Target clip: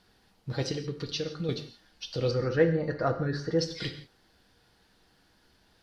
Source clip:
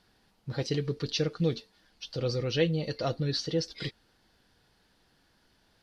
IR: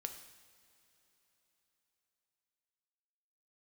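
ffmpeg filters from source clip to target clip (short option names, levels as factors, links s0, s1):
-filter_complex "[0:a]asettb=1/sr,asplit=3[s0][s1][s2];[s0]atrim=end=0.714[s3];[s1]atrim=start=0.71:end=1.49,asetpts=PTS-STARTPTS,afade=t=in:d=0.004:c=qsin,afade=t=out:st=0.776:d=0.004:c=qsin,acompressor=threshold=0.0224:ratio=4[s4];[s2]atrim=start=1.486[s5];[s3][s4]acrossfade=d=0.004:c1=hsin:c2=qsin[s6];[s6][s5]acrossfade=d=0.004:c1=qsin:c2=hsin,asettb=1/sr,asplit=3[s7][s8][s9];[s7]atrim=end=2.314[s10];[s8]atrim=start=2.31:end=3.59,asetpts=PTS-STARTPTS,afade=t=in:d=0.004:c=qsin,afade=t=out:st=1.276:d=0.004:c=qsin,highshelf=f=2200:t=q:w=3:g=-11.5[s11];[s9]atrim=start=3.586[s12];[s10][s11]acrossfade=d=0.004:c1=hsin:c2=qsin[s13];[s13][s12]acrossfade=d=0.004:c1=qsin:c2=hsin[s14];[1:a]atrim=start_sample=2205,afade=t=out:st=0.23:d=0.01,atrim=end_sample=10584[s15];[s14][s15]afir=irnorm=-1:irlink=0,volume=1.78"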